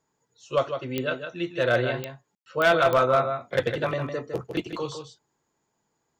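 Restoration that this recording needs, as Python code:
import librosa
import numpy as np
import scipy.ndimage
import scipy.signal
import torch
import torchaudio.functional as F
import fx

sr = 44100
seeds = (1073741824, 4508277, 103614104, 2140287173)

y = fx.fix_declip(x, sr, threshold_db=-13.0)
y = fx.fix_declick_ar(y, sr, threshold=10.0)
y = fx.fix_ambience(y, sr, seeds[0], print_start_s=5.26, print_end_s=5.76, start_s=2.35, end_s=2.46)
y = fx.fix_echo_inverse(y, sr, delay_ms=156, level_db=-8.0)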